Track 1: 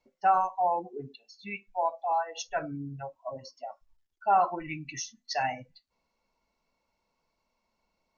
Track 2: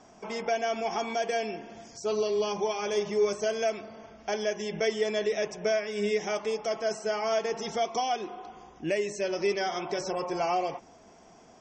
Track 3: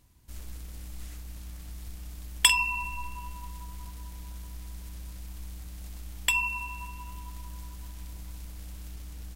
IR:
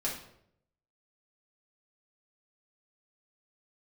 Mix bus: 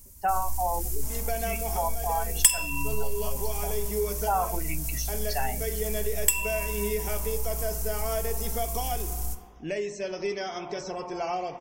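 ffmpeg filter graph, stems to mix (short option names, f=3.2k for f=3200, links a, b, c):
-filter_complex "[0:a]volume=1dB,asplit=2[a][b];[1:a]adelay=800,volume=-4.5dB,asplit=2[c][d];[d]volume=-13dB[e];[2:a]aexciter=amount=7.5:drive=4:freq=5.4k,volume=-1dB,asplit=2[f][g];[g]volume=-8.5dB[h];[b]apad=whole_len=547139[i];[c][i]sidechaincompress=threshold=-36dB:ratio=8:attack=16:release=552[j];[3:a]atrim=start_sample=2205[k];[e][h]amix=inputs=2:normalize=0[l];[l][k]afir=irnorm=-1:irlink=0[m];[a][j][f][m]amix=inputs=4:normalize=0,lowshelf=f=83:g=12,acompressor=threshold=-25dB:ratio=2"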